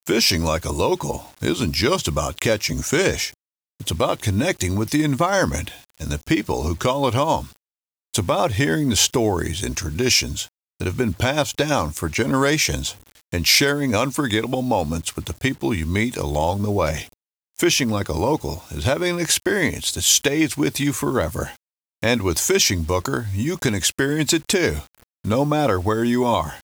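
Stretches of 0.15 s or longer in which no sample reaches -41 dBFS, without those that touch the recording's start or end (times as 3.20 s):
3.34–3.80 s
7.57–8.14 s
10.49–10.80 s
17.13–17.55 s
21.57–22.02 s
25.04–25.24 s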